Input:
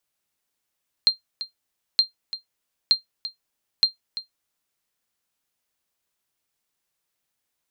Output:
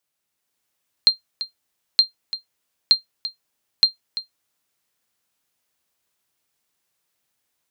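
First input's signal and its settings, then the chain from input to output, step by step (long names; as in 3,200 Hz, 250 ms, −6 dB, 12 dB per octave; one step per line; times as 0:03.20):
ping with an echo 4,180 Hz, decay 0.13 s, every 0.92 s, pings 4, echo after 0.34 s, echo −14 dB −8 dBFS
high-pass filter 52 Hz
automatic gain control gain up to 4.5 dB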